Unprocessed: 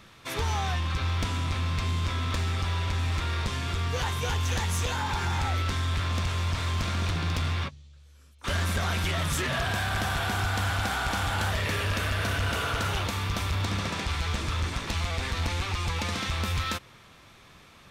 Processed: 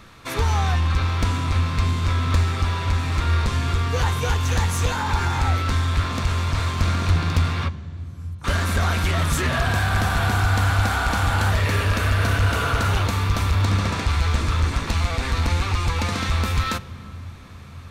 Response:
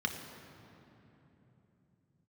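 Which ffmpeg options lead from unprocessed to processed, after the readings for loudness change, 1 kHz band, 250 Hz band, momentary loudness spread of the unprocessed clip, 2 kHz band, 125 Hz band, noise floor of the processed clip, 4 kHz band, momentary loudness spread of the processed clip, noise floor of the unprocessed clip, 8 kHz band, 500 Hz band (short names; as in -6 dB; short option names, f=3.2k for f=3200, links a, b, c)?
+7.0 dB, +6.5 dB, +7.0 dB, 3 LU, +5.0 dB, +8.0 dB, -39 dBFS, +2.5 dB, 6 LU, -53 dBFS, +4.0 dB, +6.0 dB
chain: -filter_complex "[0:a]lowshelf=f=120:g=7.5,asplit=2[a][b];[1:a]atrim=start_sample=2205[c];[b][c]afir=irnorm=-1:irlink=0,volume=-16dB[d];[a][d]amix=inputs=2:normalize=0,volume=5dB"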